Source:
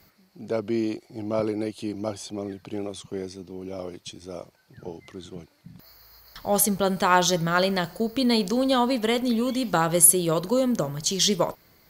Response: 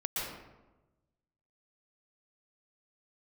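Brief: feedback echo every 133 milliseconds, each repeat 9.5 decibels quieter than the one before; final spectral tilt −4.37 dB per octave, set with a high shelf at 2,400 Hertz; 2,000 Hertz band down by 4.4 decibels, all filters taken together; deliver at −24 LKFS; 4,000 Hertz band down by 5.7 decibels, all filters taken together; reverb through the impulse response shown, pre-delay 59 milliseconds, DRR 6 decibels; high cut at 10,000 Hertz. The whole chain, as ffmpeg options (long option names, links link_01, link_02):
-filter_complex "[0:a]lowpass=10000,equalizer=frequency=2000:width_type=o:gain=-6.5,highshelf=frequency=2400:gain=3.5,equalizer=frequency=4000:width_type=o:gain=-8.5,aecho=1:1:133|266|399|532:0.335|0.111|0.0365|0.012,asplit=2[link_01][link_02];[1:a]atrim=start_sample=2205,adelay=59[link_03];[link_02][link_03]afir=irnorm=-1:irlink=0,volume=-11dB[link_04];[link_01][link_04]amix=inputs=2:normalize=0,volume=-1dB"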